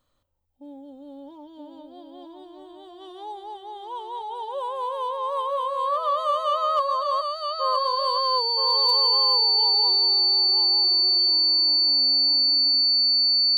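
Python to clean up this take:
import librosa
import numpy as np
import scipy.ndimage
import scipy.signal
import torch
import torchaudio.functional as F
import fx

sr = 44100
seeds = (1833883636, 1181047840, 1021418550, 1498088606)

y = fx.fix_declip(x, sr, threshold_db=-14.0)
y = fx.notch(y, sr, hz=4500.0, q=30.0)
y = fx.fix_echo_inverse(y, sr, delay_ms=970, level_db=-5.5)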